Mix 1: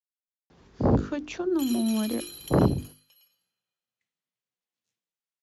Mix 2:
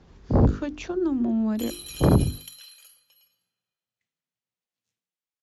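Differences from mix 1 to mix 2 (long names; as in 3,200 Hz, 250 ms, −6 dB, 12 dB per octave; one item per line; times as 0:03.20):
speech: entry −0.50 s
master: remove high-pass filter 160 Hz 6 dB per octave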